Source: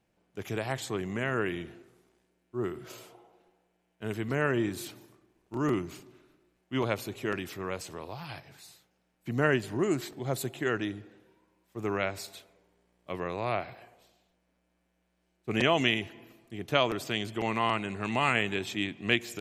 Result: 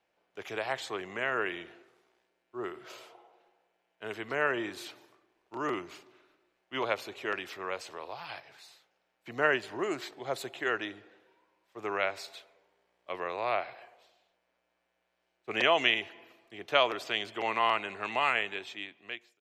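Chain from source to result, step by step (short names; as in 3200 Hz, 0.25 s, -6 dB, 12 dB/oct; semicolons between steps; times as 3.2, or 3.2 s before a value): ending faded out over 1.48 s; three-band isolator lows -19 dB, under 420 Hz, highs -13 dB, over 5400 Hz; gain +2 dB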